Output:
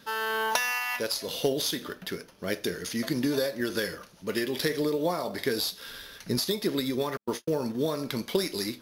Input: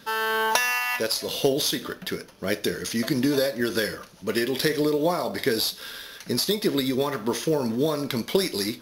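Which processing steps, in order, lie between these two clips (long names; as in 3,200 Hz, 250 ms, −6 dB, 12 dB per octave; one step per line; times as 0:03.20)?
0:05.88–0:06.40: low-shelf EQ 150 Hz +10 dB
0:07.17–0:07.75: noise gate −26 dBFS, range −57 dB
level −4.5 dB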